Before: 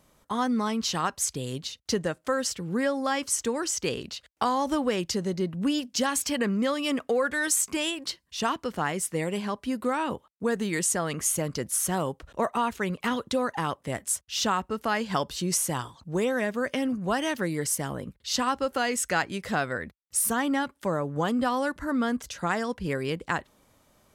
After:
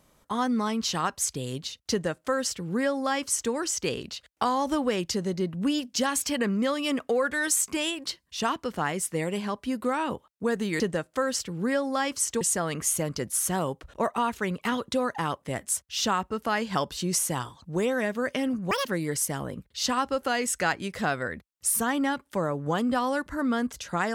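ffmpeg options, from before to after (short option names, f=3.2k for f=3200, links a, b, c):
-filter_complex "[0:a]asplit=5[a][b][c][d][e];[a]atrim=end=10.802[f];[b]atrim=start=1.908:end=3.522[g];[c]atrim=start=10.798:end=17.104[h];[d]atrim=start=17.1:end=17.35,asetpts=PTS-STARTPTS,asetrate=77616,aresample=44100,atrim=end_sample=6264,asetpts=PTS-STARTPTS[i];[e]atrim=start=17.346[j];[f][g]acrossfade=d=0.004:c1=hsin:c2=hsin[k];[k][h]acrossfade=d=0.004:c1=hsin:c2=hsin[l];[l][i]acrossfade=d=0.004:c1=hsin:c2=hsin[m];[m][j]acrossfade=d=0.004:c1=hsin:c2=hsin"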